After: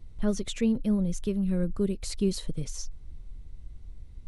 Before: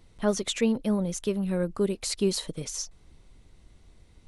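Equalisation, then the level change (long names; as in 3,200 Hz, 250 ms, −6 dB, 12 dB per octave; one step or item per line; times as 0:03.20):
low-shelf EQ 230 Hz +11.5 dB
dynamic equaliser 850 Hz, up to −6 dB, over −43 dBFS, Q 1.7
low-shelf EQ 73 Hz +10 dB
−6.5 dB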